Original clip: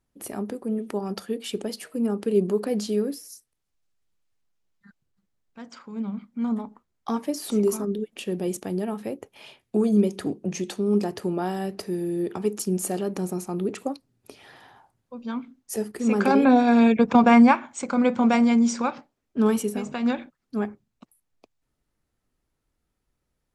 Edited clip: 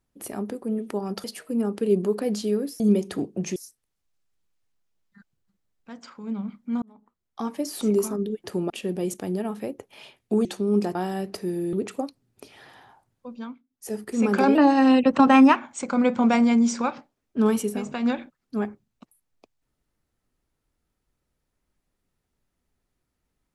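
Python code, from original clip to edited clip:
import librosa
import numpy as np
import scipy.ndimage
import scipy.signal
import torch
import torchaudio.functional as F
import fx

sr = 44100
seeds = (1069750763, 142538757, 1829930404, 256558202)

y = fx.edit(x, sr, fx.cut(start_s=1.24, length_s=0.45),
    fx.fade_in_span(start_s=6.51, length_s=0.88),
    fx.move(start_s=9.88, length_s=0.76, to_s=3.25),
    fx.move(start_s=11.14, length_s=0.26, to_s=8.13),
    fx.cut(start_s=12.18, length_s=1.42),
    fx.fade_down_up(start_s=15.15, length_s=0.76, db=-23.0, fade_s=0.35),
    fx.speed_span(start_s=16.42, length_s=1.14, speed=1.13), tone=tone)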